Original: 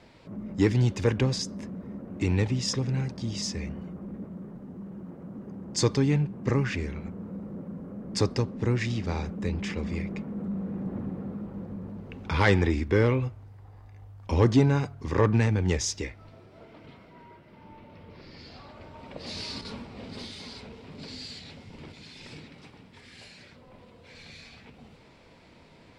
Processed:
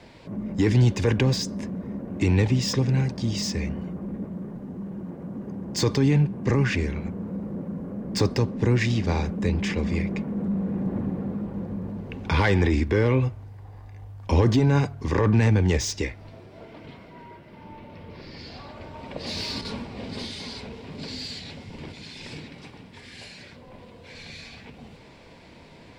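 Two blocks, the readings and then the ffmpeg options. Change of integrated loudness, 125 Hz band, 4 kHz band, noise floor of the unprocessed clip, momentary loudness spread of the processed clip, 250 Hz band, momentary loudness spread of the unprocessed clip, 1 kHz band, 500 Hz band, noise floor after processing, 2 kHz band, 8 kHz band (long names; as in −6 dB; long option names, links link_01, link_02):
+3.0 dB, +4.0 dB, +3.5 dB, −54 dBFS, 22 LU, +4.0 dB, 22 LU, +2.5 dB, +2.0 dB, −48 dBFS, +3.0 dB, +1.0 dB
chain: -filter_complex "[0:a]acrossover=split=260|4100[link_01][link_02][link_03];[link_03]asoftclip=type=tanh:threshold=-36dB[link_04];[link_01][link_02][link_04]amix=inputs=3:normalize=0,bandreject=frequency=1300:width=11,alimiter=limit=-17.5dB:level=0:latency=1:release=18,volume=6dB"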